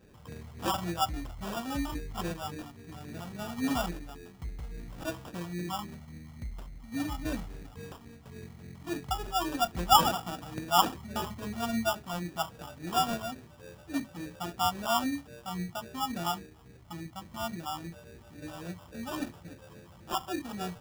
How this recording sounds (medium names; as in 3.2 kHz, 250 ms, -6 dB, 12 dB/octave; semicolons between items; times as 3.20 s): phasing stages 6, 3.6 Hz, lowest notch 370–1200 Hz; aliases and images of a low sample rate 2.1 kHz, jitter 0%